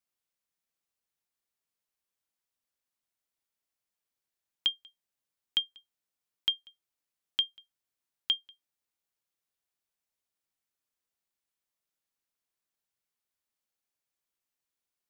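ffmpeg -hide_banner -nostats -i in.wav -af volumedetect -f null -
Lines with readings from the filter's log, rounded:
mean_volume: -43.6 dB
max_volume: -16.0 dB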